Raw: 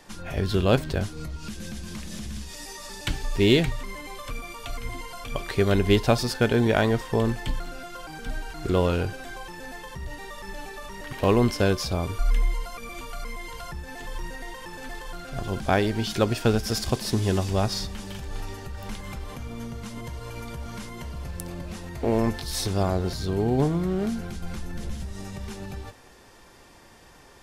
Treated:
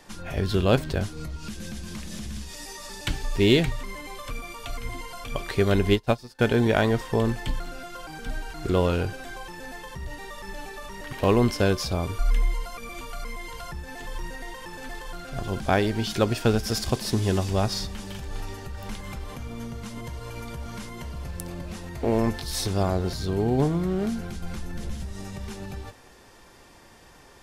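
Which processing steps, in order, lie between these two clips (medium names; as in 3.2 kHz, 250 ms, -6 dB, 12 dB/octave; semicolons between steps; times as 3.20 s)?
5.90–6.39 s: upward expansion 2.5:1, over -34 dBFS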